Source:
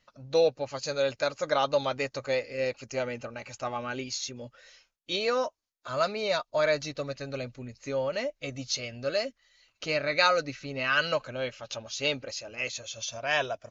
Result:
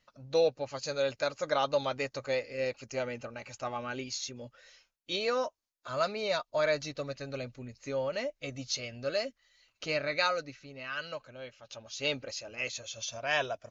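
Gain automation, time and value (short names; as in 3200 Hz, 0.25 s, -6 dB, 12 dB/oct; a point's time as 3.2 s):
10.01 s -3 dB
10.77 s -12 dB
11.57 s -12 dB
12.12 s -2.5 dB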